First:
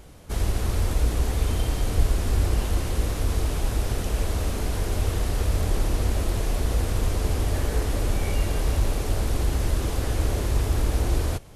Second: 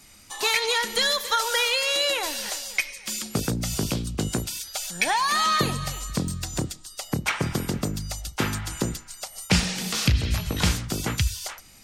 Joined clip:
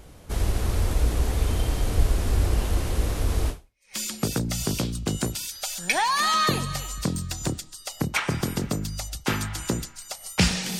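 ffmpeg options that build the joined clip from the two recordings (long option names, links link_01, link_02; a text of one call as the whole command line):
ffmpeg -i cue0.wav -i cue1.wav -filter_complex "[0:a]apad=whole_dur=10.79,atrim=end=10.79,atrim=end=3.95,asetpts=PTS-STARTPTS[link_01];[1:a]atrim=start=2.61:end=9.91,asetpts=PTS-STARTPTS[link_02];[link_01][link_02]acrossfade=duration=0.46:curve1=exp:curve2=exp" out.wav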